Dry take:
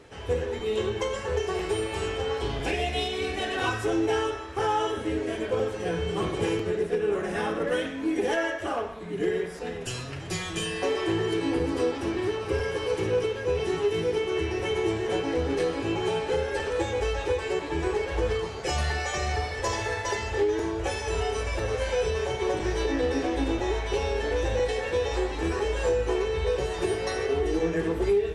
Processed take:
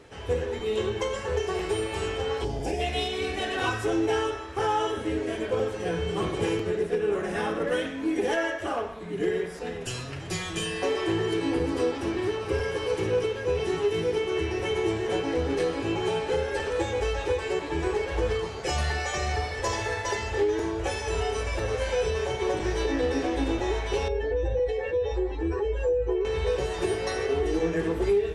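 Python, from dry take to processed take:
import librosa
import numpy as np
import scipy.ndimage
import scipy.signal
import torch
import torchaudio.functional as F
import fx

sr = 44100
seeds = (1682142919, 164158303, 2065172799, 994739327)

y = fx.spec_box(x, sr, start_s=2.44, length_s=0.36, low_hz=960.0, high_hz=4500.0, gain_db=-11)
y = fx.spec_expand(y, sr, power=1.6, at=(24.08, 26.25))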